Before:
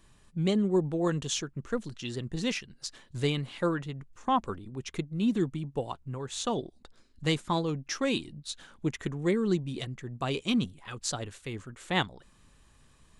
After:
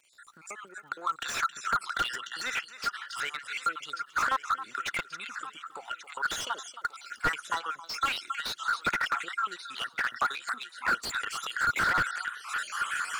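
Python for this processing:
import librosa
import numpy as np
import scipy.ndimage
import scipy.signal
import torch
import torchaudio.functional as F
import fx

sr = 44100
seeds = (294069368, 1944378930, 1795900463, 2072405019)

p1 = fx.spec_dropout(x, sr, seeds[0], share_pct=57)
p2 = fx.recorder_agc(p1, sr, target_db=-20.0, rise_db_per_s=54.0, max_gain_db=30)
p3 = fx.highpass_res(p2, sr, hz=1400.0, q=15.0)
p4 = p3 + 10.0 ** (-15.0 / 20.0) * np.pad(p3, (int(270 * sr / 1000.0), 0))[:len(p3)]
p5 = fx.dmg_crackle(p4, sr, seeds[1], per_s=110.0, level_db=-54.0)
p6 = p5 + fx.echo_feedback(p5, sr, ms=1133, feedback_pct=48, wet_db=-18.0, dry=0)
y = fx.slew_limit(p6, sr, full_power_hz=100.0)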